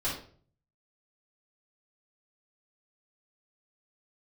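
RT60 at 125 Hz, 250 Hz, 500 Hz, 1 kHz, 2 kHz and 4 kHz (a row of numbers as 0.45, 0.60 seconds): 0.85, 0.55, 0.50, 0.40, 0.40, 0.35 seconds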